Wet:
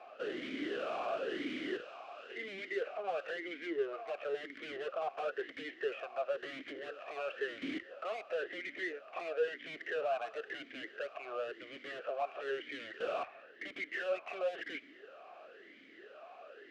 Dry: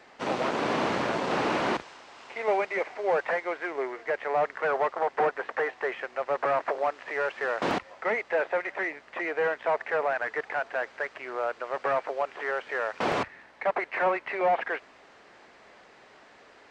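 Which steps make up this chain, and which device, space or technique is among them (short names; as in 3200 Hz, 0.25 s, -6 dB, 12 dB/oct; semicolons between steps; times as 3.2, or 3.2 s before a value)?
talk box (tube stage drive 37 dB, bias 0.3; vowel sweep a-i 0.98 Hz); gain +11 dB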